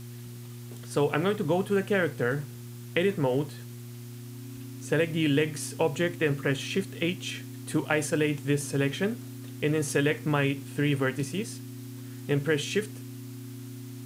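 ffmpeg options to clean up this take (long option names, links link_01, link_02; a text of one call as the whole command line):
ffmpeg -i in.wav -af "adeclick=threshold=4,bandreject=frequency=119.6:width_type=h:width=4,bandreject=frequency=239.2:width_type=h:width=4,bandreject=frequency=358.8:width_type=h:width=4,bandreject=frequency=270:width=30,afwtdn=0.0025" out.wav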